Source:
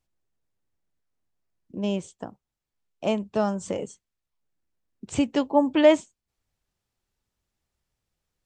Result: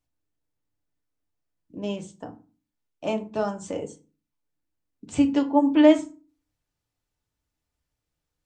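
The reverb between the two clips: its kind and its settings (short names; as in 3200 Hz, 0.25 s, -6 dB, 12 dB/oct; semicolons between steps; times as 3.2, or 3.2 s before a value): FDN reverb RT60 0.34 s, low-frequency decay 1.5×, high-frequency decay 0.65×, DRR 3.5 dB; gain -3.5 dB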